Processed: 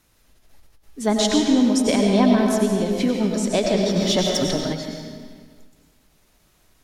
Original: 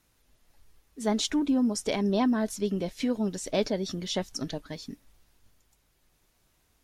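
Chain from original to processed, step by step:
comb and all-pass reverb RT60 1.8 s, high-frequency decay 0.85×, pre-delay 60 ms, DRR 0.5 dB
0:03.96–0:04.73: leveller curve on the samples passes 1
every ending faded ahead of time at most 130 dB per second
level +6.5 dB

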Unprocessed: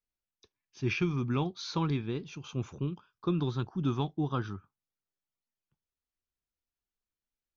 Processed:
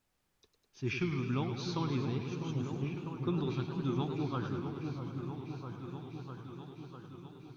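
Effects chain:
background noise pink −75 dBFS
echo whose low-pass opens from repeat to repeat 650 ms, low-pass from 750 Hz, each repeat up 1 octave, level −6 dB
feedback echo with a swinging delay time 104 ms, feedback 76%, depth 139 cents, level −9 dB
level −4.5 dB

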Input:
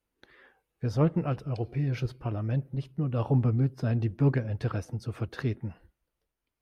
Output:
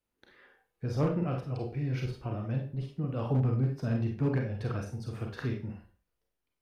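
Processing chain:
four-comb reverb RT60 0.35 s, combs from 31 ms, DRR 1 dB
hard clipping −16.5 dBFS, distortion −23 dB
level −4.5 dB

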